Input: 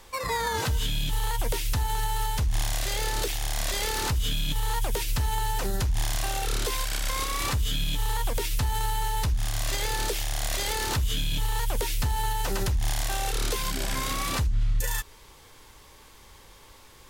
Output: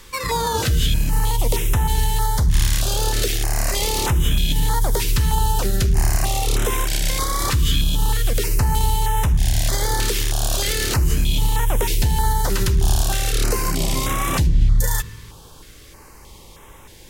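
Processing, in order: on a send at -16 dB: reverberation RT60 1.1 s, pre-delay 47 ms; on the sum: step-sequenced notch 3.2 Hz 710–4500 Hz; trim +8 dB

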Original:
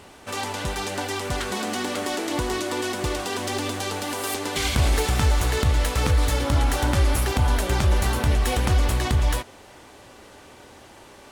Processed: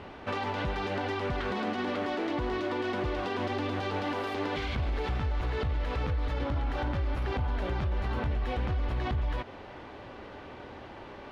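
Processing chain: peak limiter -20 dBFS, peak gain reduction 9.5 dB; compression, threshold -30 dBFS, peak gain reduction 7 dB; distance through air 310 m; trim +3.5 dB

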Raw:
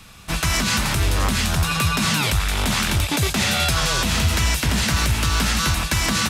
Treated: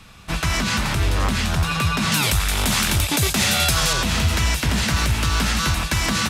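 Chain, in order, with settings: treble shelf 6.1 kHz -8 dB, from 2.12 s +6 dB, from 3.93 s -3.5 dB

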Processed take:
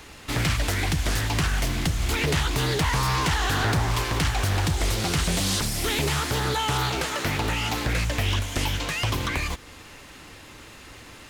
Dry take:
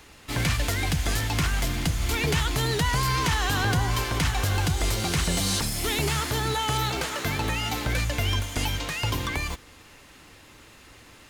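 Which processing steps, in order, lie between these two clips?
in parallel at +2 dB: compression, threshold -34 dBFS, peak gain reduction 13.5 dB; on the sum: loudspeaker Doppler distortion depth 0.51 ms; trim -1.5 dB

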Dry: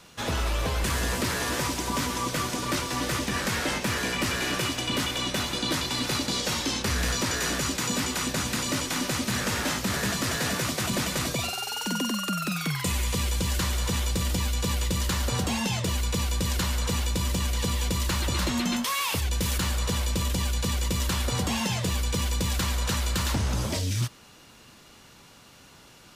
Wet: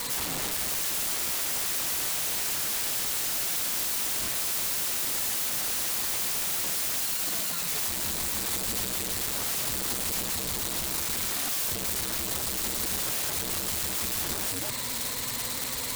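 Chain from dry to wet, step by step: in parallel at -9 dB: fuzz box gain 49 dB, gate -58 dBFS; on the sum: compression 16:1, threshold -22 dBFS, peak gain reduction 6 dB; rippled EQ curve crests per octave 0.99, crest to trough 16 dB; granular stretch 0.61×, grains 110 ms; on a send: thinning echo 540 ms, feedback 78%, high-pass 810 Hz, level -17 dB; on the sum: integer overflow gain 21.5 dB; treble shelf 5.2 kHz +6.5 dB; trim -7.5 dB

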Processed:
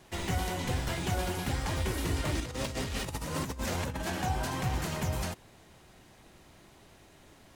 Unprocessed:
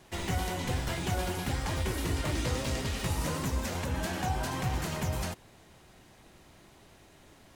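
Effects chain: 2.40–4.10 s: compressor with a negative ratio -34 dBFS, ratio -0.5

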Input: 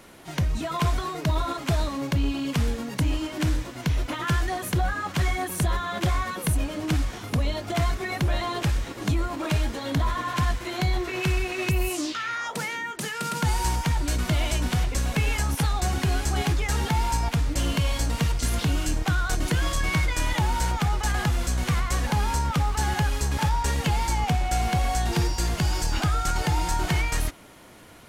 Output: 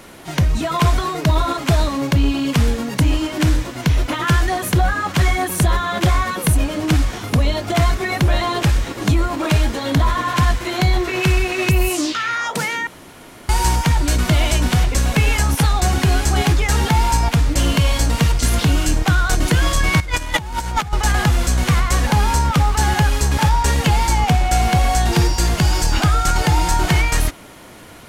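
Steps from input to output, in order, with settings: 12.87–13.49 s: room tone; 20.00–20.93 s: compressor with a negative ratio -29 dBFS, ratio -0.5; trim +8.5 dB

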